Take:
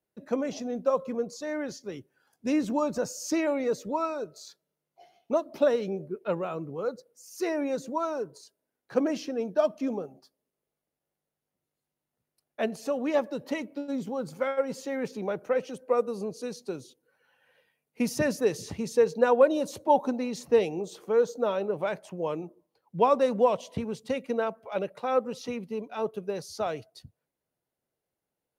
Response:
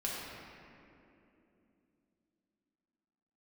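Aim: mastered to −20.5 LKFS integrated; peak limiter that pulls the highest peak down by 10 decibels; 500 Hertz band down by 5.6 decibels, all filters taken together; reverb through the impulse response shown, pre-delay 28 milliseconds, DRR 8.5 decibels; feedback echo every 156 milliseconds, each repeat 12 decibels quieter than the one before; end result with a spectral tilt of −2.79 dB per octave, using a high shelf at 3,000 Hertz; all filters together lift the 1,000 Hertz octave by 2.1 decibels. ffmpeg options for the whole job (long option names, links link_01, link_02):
-filter_complex "[0:a]equalizer=frequency=500:width_type=o:gain=-7.5,equalizer=frequency=1000:width_type=o:gain=5.5,highshelf=frequency=3000:gain=-6.5,alimiter=limit=-19.5dB:level=0:latency=1,aecho=1:1:156|312|468:0.251|0.0628|0.0157,asplit=2[link_01][link_02];[1:a]atrim=start_sample=2205,adelay=28[link_03];[link_02][link_03]afir=irnorm=-1:irlink=0,volume=-12.5dB[link_04];[link_01][link_04]amix=inputs=2:normalize=0,volume=12.5dB"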